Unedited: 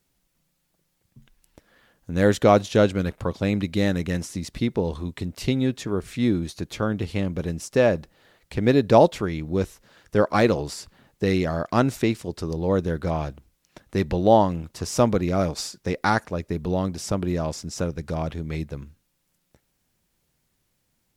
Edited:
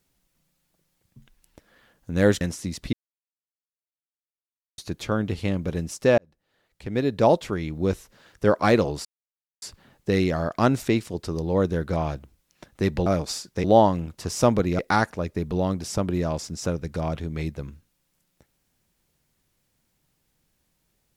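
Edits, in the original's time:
0:02.41–0:04.12: remove
0:04.64–0:06.49: silence
0:07.89–0:09.52: fade in
0:10.76: splice in silence 0.57 s
0:15.35–0:15.93: move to 0:14.20

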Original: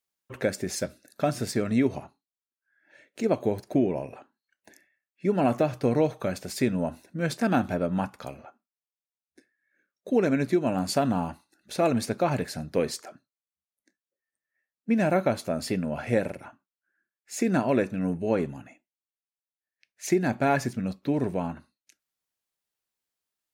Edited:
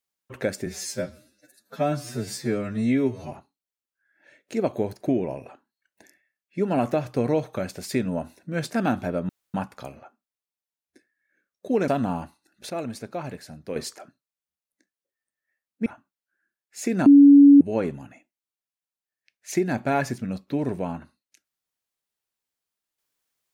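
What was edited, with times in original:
0:00.66–0:01.99: time-stretch 2×
0:07.96: splice in room tone 0.25 s
0:10.30–0:10.95: remove
0:11.77–0:12.83: clip gain −7.5 dB
0:14.93–0:16.41: remove
0:17.61–0:18.16: beep over 283 Hz −7.5 dBFS

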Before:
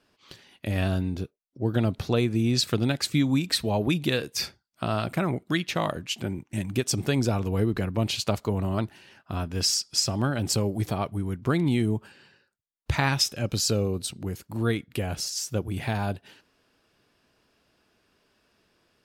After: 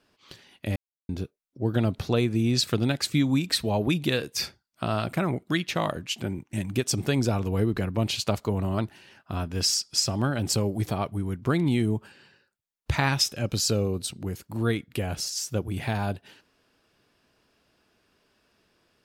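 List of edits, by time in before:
0:00.76–0:01.09: silence

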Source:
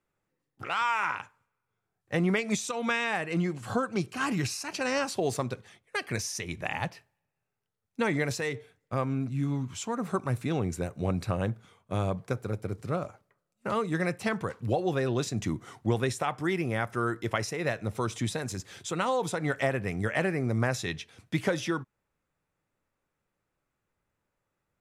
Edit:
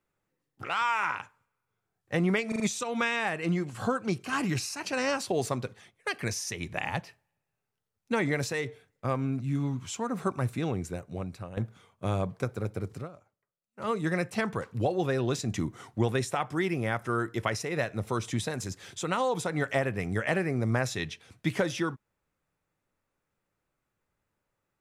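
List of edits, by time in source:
0:02.48: stutter 0.04 s, 4 plays
0:10.35–0:11.45: fade out, to −14.5 dB
0:12.83–0:13.79: duck −16 dB, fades 0.13 s

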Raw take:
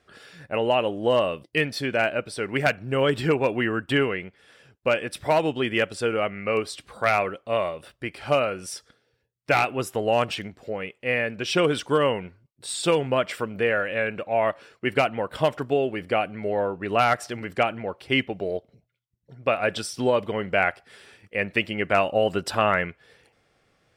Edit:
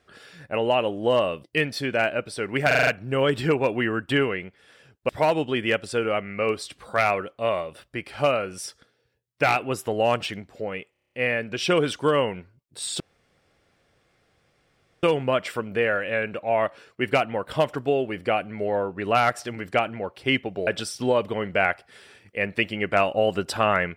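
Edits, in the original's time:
0:02.67: stutter 0.04 s, 6 plays
0:04.89–0:05.17: remove
0:10.99: stutter 0.03 s, 8 plays
0:12.87: splice in room tone 2.03 s
0:18.51–0:19.65: remove

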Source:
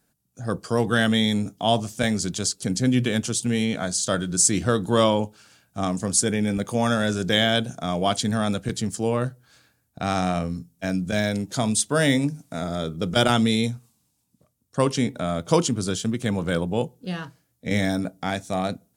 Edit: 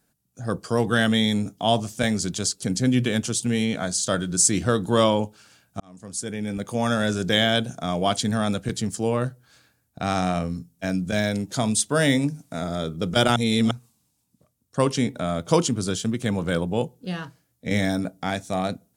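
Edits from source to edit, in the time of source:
0:05.80–0:07.03: fade in
0:13.36–0:13.71: reverse

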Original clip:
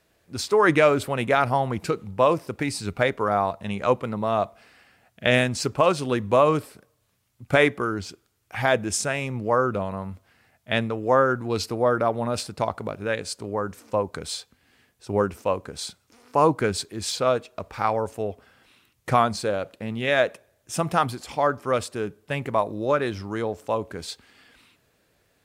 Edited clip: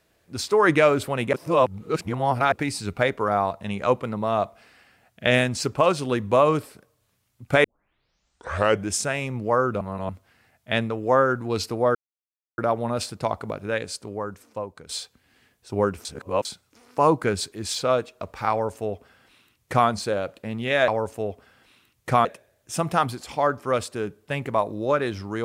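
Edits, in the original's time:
0:01.33–0:02.52: reverse
0:07.64: tape start 1.27 s
0:09.81–0:10.09: reverse
0:11.95: splice in silence 0.63 s
0:13.11–0:14.26: fade out, to −13 dB
0:15.42–0:15.82: reverse
0:17.88–0:19.25: duplicate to 0:20.25

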